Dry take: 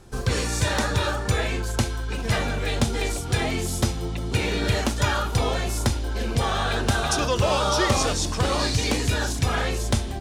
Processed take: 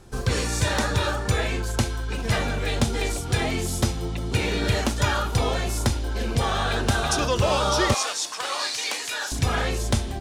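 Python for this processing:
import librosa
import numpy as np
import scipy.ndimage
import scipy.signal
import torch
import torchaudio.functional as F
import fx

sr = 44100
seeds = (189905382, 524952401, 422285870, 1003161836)

y = fx.highpass(x, sr, hz=890.0, slope=12, at=(7.94, 9.32))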